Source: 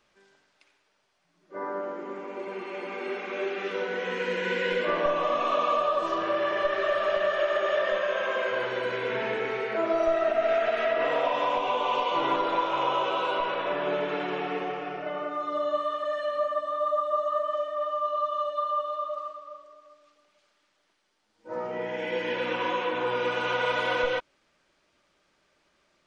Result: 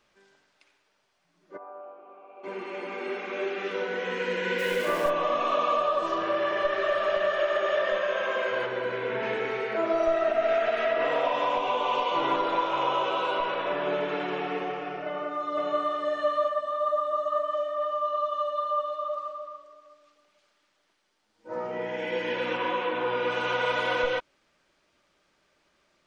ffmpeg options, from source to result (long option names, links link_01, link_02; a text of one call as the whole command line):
ffmpeg -i in.wav -filter_complex "[0:a]asplit=3[link_01][link_02][link_03];[link_01]afade=type=out:start_time=1.56:duration=0.02[link_04];[link_02]asplit=3[link_05][link_06][link_07];[link_05]bandpass=frequency=730:width_type=q:width=8,volume=0dB[link_08];[link_06]bandpass=frequency=1090:width_type=q:width=8,volume=-6dB[link_09];[link_07]bandpass=frequency=2440:width_type=q:width=8,volume=-9dB[link_10];[link_08][link_09][link_10]amix=inputs=3:normalize=0,afade=type=in:start_time=1.56:duration=0.02,afade=type=out:start_time=2.43:duration=0.02[link_11];[link_03]afade=type=in:start_time=2.43:duration=0.02[link_12];[link_04][link_11][link_12]amix=inputs=3:normalize=0,asplit=3[link_13][link_14][link_15];[link_13]afade=type=out:start_time=4.58:duration=0.02[link_16];[link_14]aeval=exprs='val(0)*gte(abs(val(0)),0.0168)':channel_layout=same,afade=type=in:start_time=4.58:duration=0.02,afade=type=out:start_time=5.09:duration=0.02[link_17];[link_15]afade=type=in:start_time=5.09:duration=0.02[link_18];[link_16][link_17][link_18]amix=inputs=3:normalize=0,asettb=1/sr,asplit=3[link_19][link_20][link_21];[link_19]atrim=end=8.664[link_22];[link_20]atrim=start=8.66:end=9.23,asetpts=PTS-STARTPTS,afade=type=in:duration=0.004:curve=qsin,afade=type=out:start_time=0.566:duration=0.004:curve=qsin,highshelf=frequency=3800:gain=-10.5[link_23];[link_21]atrim=start=9.226[link_24];[link_22][link_23]acrossfade=duration=0.004:curve1=hsin:curve2=qsin[link_25];[link_25][link_24]acrossfade=duration=0.004:curve1=qsin:curve2=hsin,asplit=2[link_26][link_27];[link_27]afade=type=in:start_time=15.06:duration=0.01,afade=type=out:start_time=15.98:duration=0.01,aecho=0:1:510|1020|1530:0.749894|0.112484|0.0168726[link_28];[link_26][link_28]amix=inputs=2:normalize=0,asplit=3[link_29][link_30][link_31];[link_29]afade=type=out:start_time=16.83:duration=0.02[link_32];[link_30]asplit=2[link_33][link_34];[link_34]adelay=306,lowpass=frequency=2000:poles=1,volume=-10.5dB,asplit=2[link_35][link_36];[link_36]adelay=306,lowpass=frequency=2000:poles=1,volume=0.48,asplit=2[link_37][link_38];[link_38]adelay=306,lowpass=frequency=2000:poles=1,volume=0.48,asplit=2[link_39][link_40];[link_40]adelay=306,lowpass=frequency=2000:poles=1,volume=0.48,asplit=2[link_41][link_42];[link_42]adelay=306,lowpass=frequency=2000:poles=1,volume=0.48[link_43];[link_33][link_35][link_37][link_39][link_41][link_43]amix=inputs=6:normalize=0,afade=type=in:start_time=16.83:duration=0.02,afade=type=out:start_time=19.55:duration=0.02[link_44];[link_31]afade=type=in:start_time=19.55:duration=0.02[link_45];[link_32][link_44][link_45]amix=inputs=3:normalize=0,asettb=1/sr,asplit=3[link_46][link_47][link_48];[link_46]atrim=end=22.574[link_49];[link_47]atrim=start=22.57:end=23.3,asetpts=PTS-STARTPTS,afade=type=in:duration=0.004:curve=qsin,afade=type=out:start_time=0.726:duration=0.004:curve=qsin,highpass=100,lowpass=4300[link_50];[link_48]atrim=start=23.296[link_51];[link_49][link_50]acrossfade=duration=0.004:curve1=hsin:curve2=qsin[link_52];[link_52][link_51]acrossfade=duration=0.004:curve1=qsin:curve2=hsin" out.wav